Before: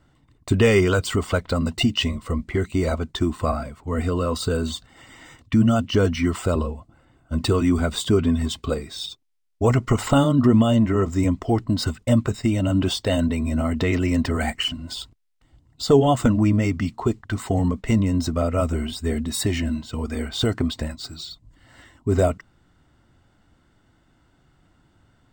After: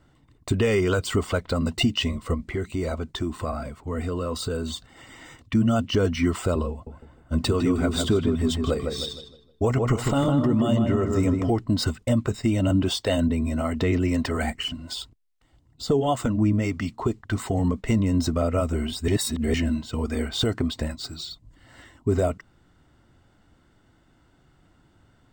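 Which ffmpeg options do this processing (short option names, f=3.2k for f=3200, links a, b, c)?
-filter_complex "[0:a]asettb=1/sr,asplit=3[a][b][c];[a]atrim=end=2.344[d];[b]atrim=start=2.34:end=5.55,asetpts=PTS-STARTPTS,afade=t=in:d=0.004:c=qsin,afade=t=out:st=3.206:d=0.004:c=qsin,acompressor=threshold=-29dB:ratio=2:attack=3.2:release=140:knee=1:detection=peak[e];[c]atrim=start=5.546[f];[d][e]acrossfade=d=0.004:c1=hsin:c2=qsin[g];[g][f]acrossfade=d=0.004:c1=qsin:c2=hsin,asettb=1/sr,asplit=3[h][i][j];[h]atrim=end=6.714[k];[i]atrim=start=6.71:end=11.51,asetpts=PTS-STARTPTS,afade=t=in:d=0.004:c=qsin,afade=t=out:st=4.796:d=0.004:c=qsin,asplit=2[l][m];[m]adelay=155,lowpass=f=2k:p=1,volume=-5dB,asplit=2[n][o];[o]adelay=155,lowpass=f=2k:p=1,volume=0.39,asplit=2[p][q];[q]adelay=155,lowpass=f=2k:p=1,volume=0.39,asplit=2[r][s];[s]adelay=155,lowpass=f=2k:p=1,volume=0.39,asplit=2[t][u];[u]adelay=155,lowpass=f=2k:p=1,volume=0.39[v];[l][n][p][r][t][v]amix=inputs=6:normalize=0,atrim=end_sample=211680[w];[j]atrim=start=11.506[x];[k][w]acrossfade=d=0.004:c1=hsin:c2=qsin[y];[y][x]acrossfade=d=0.004:c1=qsin:c2=hsin,asettb=1/sr,asplit=3[z][aa][ab];[z]atrim=end=12.714[ac];[aa]atrim=start=12.71:end=17,asetpts=PTS-STARTPTS,afade=t=in:d=0.004:c=qsin,afade=t=out:st=4.286:d=0.004:c=qsin,acrossover=split=440[ad][ae];[ad]aeval=exprs='val(0)*(1-0.5/2+0.5/2*cos(2*PI*1.6*n/s))':c=same[af];[ae]aeval=exprs='val(0)*(1-0.5/2-0.5/2*cos(2*PI*1.6*n/s))':c=same[ag];[af][ag]amix=inputs=2:normalize=0[ah];[ab]atrim=start=16.996[ai];[ac][ah]acrossfade=d=0.004:c1=hsin:c2=qsin[aj];[aj][ai]acrossfade=d=0.004:c1=qsin:c2=hsin,asplit=3[ak][al][am];[ak]atrim=end=19.082[an];[al]atrim=start=19.078:end=19.542,asetpts=PTS-STARTPTS,areverse[ao];[am]atrim=start=19.538[ap];[an][ao]acrossfade=d=0.004:c1=hsin:c2=hsin[aq];[aq][ap]acrossfade=d=0.004:c1=hsin:c2=hsin,equalizer=f=420:w=1.5:g=2,alimiter=limit=-12.5dB:level=0:latency=1:release=294"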